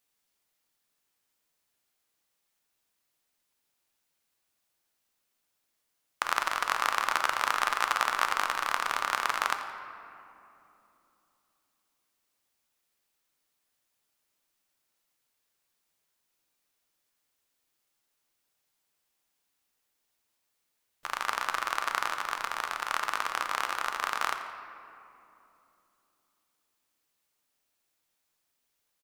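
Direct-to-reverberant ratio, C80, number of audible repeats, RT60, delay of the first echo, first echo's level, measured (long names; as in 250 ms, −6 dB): 5.5 dB, 8.0 dB, 1, 2.9 s, 86 ms, −15.5 dB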